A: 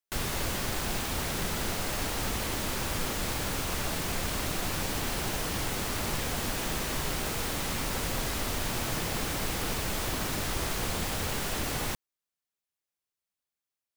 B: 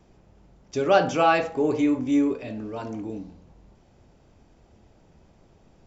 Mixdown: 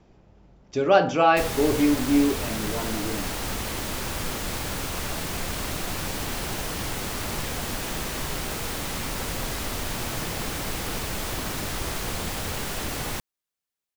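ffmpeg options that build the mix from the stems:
-filter_complex "[0:a]adelay=1250,volume=1.19[s0];[1:a]lowpass=5700,volume=1.12[s1];[s0][s1]amix=inputs=2:normalize=0"

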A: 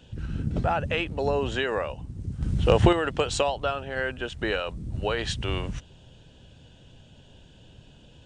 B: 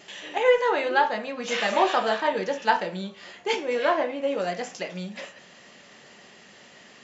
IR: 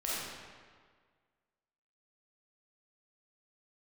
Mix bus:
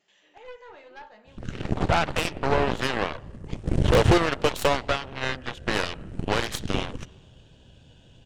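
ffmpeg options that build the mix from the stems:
-filter_complex "[0:a]asoftclip=type=tanh:threshold=0.168,adynamicequalizer=threshold=0.00794:dfrequency=1600:dqfactor=0.7:tfrequency=1600:tqfactor=0.7:attack=5:release=100:ratio=0.375:range=2:mode=cutabove:tftype=highshelf,adelay=1250,volume=1.41,asplit=2[s0][s1];[s1]volume=0.075[s2];[1:a]volume=0.126,asplit=2[s3][s4];[s4]volume=0.0708[s5];[2:a]atrim=start_sample=2205[s6];[s2][s5]amix=inputs=2:normalize=0[s7];[s7][s6]afir=irnorm=-1:irlink=0[s8];[s0][s3][s8]amix=inputs=3:normalize=0,aeval=exprs='0.282*(cos(1*acos(clip(val(0)/0.282,-1,1)))-cos(1*PI/2))+0.0355*(cos(6*acos(clip(val(0)/0.282,-1,1)))-cos(6*PI/2))+0.0631*(cos(7*acos(clip(val(0)/0.282,-1,1)))-cos(7*PI/2))':c=same"

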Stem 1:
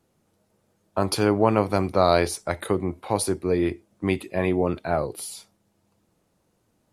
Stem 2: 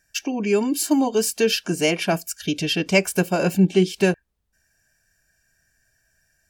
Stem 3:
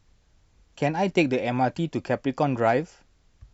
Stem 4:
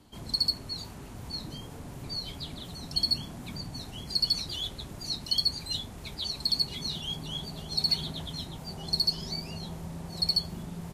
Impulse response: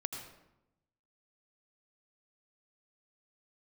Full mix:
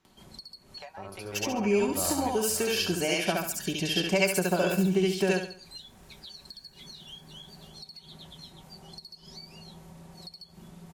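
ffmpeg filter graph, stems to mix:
-filter_complex "[0:a]asubboost=boost=10.5:cutoff=80,volume=0.501,asplit=3[s0][s1][s2];[s0]atrim=end=2.95,asetpts=PTS-STARTPTS,afade=t=out:st=2.946:d=0.004:c=hsin[s3];[s1]atrim=start=2.95:end=5.42,asetpts=PTS-STARTPTS,volume=0[s4];[s2]atrim=start=5.42,asetpts=PTS-STARTPTS,afade=t=in:d=0.004:c=hsin[s5];[s3][s4][s5]concat=n=3:v=0:a=1,asplit=2[s6][s7];[s7]volume=0.158[s8];[1:a]lowshelf=f=410:g=-10,adelay=1200,volume=1.12,asplit=2[s9][s10];[s10]volume=0.398[s11];[2:a]highpass=f=690:w=0.5412,highpass=f=690:w=1.3066,highshelf=f=3700:g=-9,acompressor=threshold=0.0501:ratio=6,volume=0.944,asplit=2[s12][s13];[3:a]alimiter=limit=0.0841:level=0:latency=1:release=158,acompressor=mode=upward:threshold=0.00631:ratio=2.5,adelay=50,volume=0.447[s14];[s13]apad=whole_len=305377[s15];[s6][s15]sidechaincompress=threshold=0.00631:ratio=5:attack=16:release=523[s16];[s12][s14]amix=inputs=2:normalize=0,lowshelf=f=320:g=-5,acompressor=threshold=0.00708:ratio=12,volume=1[s17];[s16][s9]amix=inputs=2:normalize=0,equalizer=f=4200:t=o:w=2.3:g=-10.5,acompressor=threshold=0.0562:ratio=6,volume=1[s18];[s8][s11]amix=inputs=2:normalize=0,aecho=0:1:69|138|207|276|345:1|0.38|0.144|0.0549|0.0209[s19];[s17][s18][s19]amix=inputs=3:normalize=0,aecho=1:1:5.3:0.41"

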